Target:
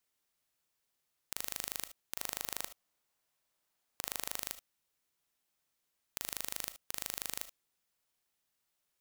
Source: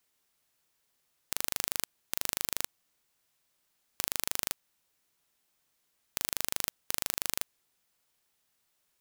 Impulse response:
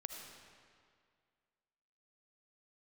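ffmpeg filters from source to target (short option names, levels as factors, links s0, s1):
-filter_complex "[0:a]asettb=1/sr,asplit=3[s0][s1][s2];[s0]atrim=end=2.154[s3];[s1]atrim=start=2.15:end=4.36,asetpts=PTS-STARTPTS,afade=t=in:d=0.004:c=qsin,afade=t=out:st=2.206:d=0.004:c=qsin,equalizer=f=780:w=0.75:g=4.5[s4];[s2]atrim=start=4.356[s5];[s3][s4]acrossfade=d=0.004:c1=hsin:c2=qsin[s6];[s6][s5]acrossfade=d=0.004:c1=qsin:c2=hsin[s7];[1:a]atrim=start_sample=2205,atrim=end_sample=3528[s8];[s7][s8]afir=irnorm=-1:irlink=0,volume=0.75"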